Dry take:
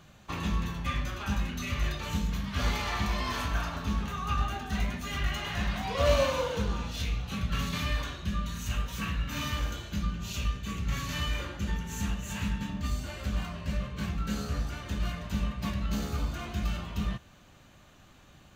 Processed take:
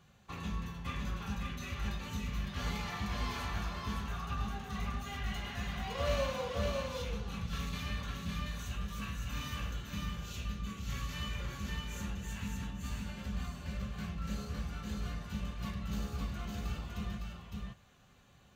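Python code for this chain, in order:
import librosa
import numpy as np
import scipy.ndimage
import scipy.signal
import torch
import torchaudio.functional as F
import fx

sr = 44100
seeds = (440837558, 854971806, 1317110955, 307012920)

p1 = fx.notch_comb(x, sr, f0_hz=310.0)
p2 = p1 + fx.echo_single(p1, sr, ms=559, db=-3.0, dry=0)
y = F.gain(torch.from_numpy(p2), -7.5).numpy()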